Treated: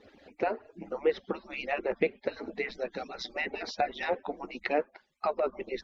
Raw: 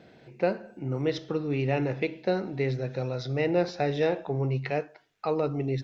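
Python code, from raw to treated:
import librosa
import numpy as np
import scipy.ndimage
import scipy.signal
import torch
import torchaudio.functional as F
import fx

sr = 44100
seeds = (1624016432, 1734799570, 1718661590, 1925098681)

y = fx.hpss_only(x, sr, part='percussive')
y = fx.env_lowpass_down(y, sr, base_hz=2100.0, full_db=-30.0)
y = y * 10.0 ** (3.5 / 20.0)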